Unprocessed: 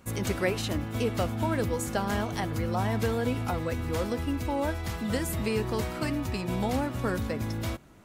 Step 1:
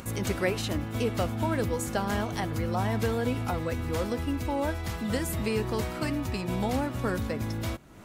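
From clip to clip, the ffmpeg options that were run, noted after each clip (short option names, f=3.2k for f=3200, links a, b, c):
-af "acompressor=mode=upward:threshold=-34dB:ratio=2.5"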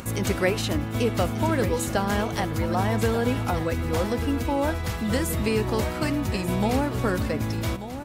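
-af "aecho=1:1:1188:0.266,volume=4.5dB"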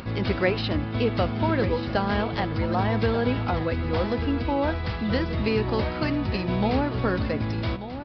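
-af "aresample=11025,aresample=44100"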